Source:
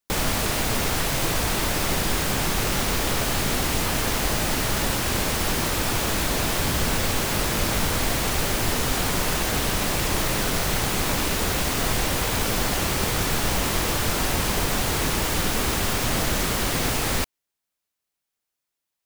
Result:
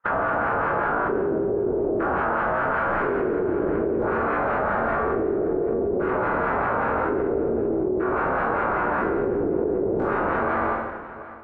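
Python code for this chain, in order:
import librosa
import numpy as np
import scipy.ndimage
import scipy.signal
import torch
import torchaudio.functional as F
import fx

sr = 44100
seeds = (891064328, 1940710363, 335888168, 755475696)

p1 = scipy.signal.medfilt(x, 25)
p2 = fx.doppler_pass(p1, sr, speed_mps=18, closest_m=4.9, pass_at_s=4.68)
p3 = fx.filter_lfo_bandpass(p2, sr, shape='sine', hz=3.1, low_hz=550.0, high_hz=2200.0, q=1.7)
p4 = np.clip(p3, -10.0 ** (-36.5 / 20.0), 10.0 ** (-36.5 / 20.0))
p5 = fx.filter_lfo_lowpass(p4, sr, shape='square', hz=0.3, low_hz=390.0, high_hz=1500.0, q=5.2)
p6 = fx.low_shelf(p5, sr, hz=130.0, db=9.5)
p7 = fx.rev_schroeder(p6, sr, rt60_s=1.9, comb_ms=27, drr_db=-8.5)
p8 = fx.stretch_vocoder(p7, sr, factor=0.6)
p9 = fx.peak_eq(p8, sr, hz=8300.0, db=4.0, octaves=0.49)
p10 = p9 + fx.echo_single(p9, sr, ms=740, db=-23.0, dry=0)
p11 = fx.env_flatten(p10, sr, amount_pct=100)
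y = p11 * librosa.db_to_amplitude(4.5)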